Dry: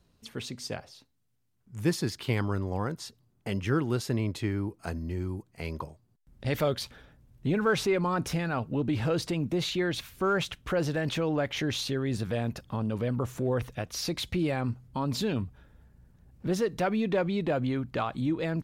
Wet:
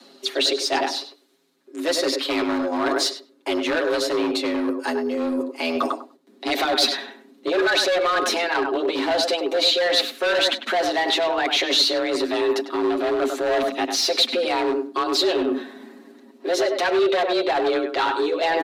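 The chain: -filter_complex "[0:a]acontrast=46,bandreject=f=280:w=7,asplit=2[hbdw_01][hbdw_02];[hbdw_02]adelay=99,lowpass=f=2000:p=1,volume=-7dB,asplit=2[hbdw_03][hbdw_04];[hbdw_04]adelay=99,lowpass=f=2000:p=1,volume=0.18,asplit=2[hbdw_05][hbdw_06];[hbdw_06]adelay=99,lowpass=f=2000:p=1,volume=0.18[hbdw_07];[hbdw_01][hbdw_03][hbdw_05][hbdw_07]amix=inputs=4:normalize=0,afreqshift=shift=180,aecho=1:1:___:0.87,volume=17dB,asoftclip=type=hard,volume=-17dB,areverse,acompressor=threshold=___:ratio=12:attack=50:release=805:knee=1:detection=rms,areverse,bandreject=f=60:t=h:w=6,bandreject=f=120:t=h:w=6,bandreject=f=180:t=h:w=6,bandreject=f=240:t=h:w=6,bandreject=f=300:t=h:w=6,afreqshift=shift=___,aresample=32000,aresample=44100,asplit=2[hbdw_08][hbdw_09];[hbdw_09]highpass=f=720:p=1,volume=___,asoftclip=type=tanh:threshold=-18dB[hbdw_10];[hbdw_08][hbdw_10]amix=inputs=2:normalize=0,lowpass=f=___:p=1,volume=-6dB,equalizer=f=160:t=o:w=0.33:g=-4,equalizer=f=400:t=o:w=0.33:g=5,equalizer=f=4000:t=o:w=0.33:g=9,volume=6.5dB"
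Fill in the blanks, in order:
7.2, -29dB, -13, 12dB, 5500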